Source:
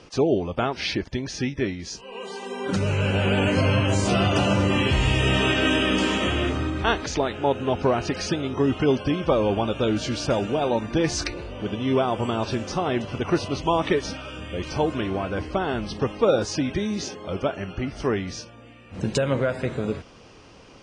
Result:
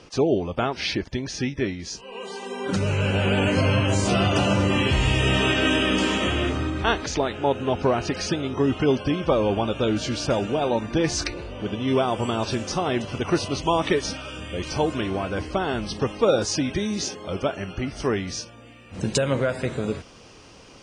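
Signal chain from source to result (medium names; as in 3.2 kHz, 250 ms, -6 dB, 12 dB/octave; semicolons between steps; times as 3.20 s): treble shelf 5.5 kHz +2.5 dB, from 11.88 s +10 dB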